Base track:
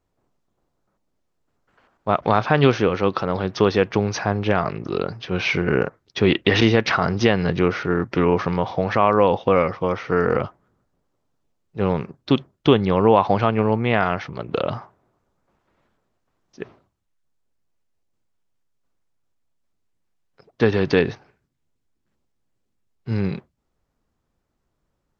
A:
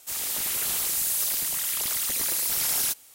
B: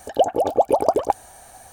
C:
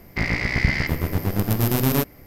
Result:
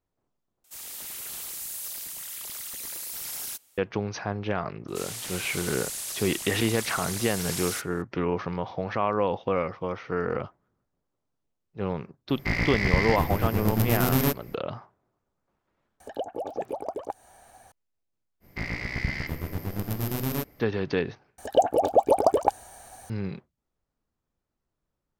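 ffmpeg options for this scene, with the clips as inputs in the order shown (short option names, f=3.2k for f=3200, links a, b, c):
-filter_complex "[1:a]asplit=2[a][b];[3:a]asplit=2[c][d];[2:a]asplit=2[e][f];[0:a]volume=-9dB[g];[b]lowpass=9.8k[h];[e]acrossover=split=110|3600[i][j][k];[i]acompressor=threshold=-58dB:ratio=4[l];[j]acompressor=threshold=-23dB:ratio=4[m];[k]acompressor=threshold=-52dB:ratio=4[n];[l][m][n]amix=inputs=3:normalize=0[o];[g]asplit=3[p][q][r];[p]atrim=end=0.644[s];[a]atrim=end=3.14,asetpts=PTS-STARTPTS,volume=-10dB[t];[q]atrim=start=3.776:end=21.384[u];[f]atrim=end=1.72,asetpts=PTS-STARTPTS,volume=-2.5dB[v];[r]atrim=start=23.096[w];[h]atrim=end=3.14,asetpts=PTS-STARTPTS,volume=-4.5dB,afade=t=in:d=0.004:c=hsin,afade=t=out:st=3.136:d=0.004:c=hsin,adelay=4880[x];[c]atrim=end=2.26,asetpts=PTS-STARTPTS,volume=-3dB,afade=t=in:d=0.004:c=hsin,afade=t=out:st=2.256:d=0.004:c=hsin,adelay=12290[y];[o]atrim=end=1.72,asetpts=PTS-STARTPTS,volume=-7dB,afade=t=in:d=0.004:c=hsin,afade=t=out:st=1.716:d=0.004:c=hsin,adelay=16000[z];[d]atrim=end=2.26,asetpts=PTS-STARTPTS,volume=-9dB,afade=t=in:d=0.05,afade=t=out:st=2.21:d=0.05,adelay=18400[aa];[s][t]acrossfade=d=0.004:c1=hsin:c2=hsin[ab];[ab][u]acrossfade=d=0.004:c1=hsin:c2=hsin[ac];[ac][v]acrossfade=d=0.004:c1=hsin:c2=hsin[ad];[ad][w]acrossfade=d=0.004:c1=hsin:c2=hsin[ae];[ae][x][y][z][aa]amix=inputs=5:normalize=0"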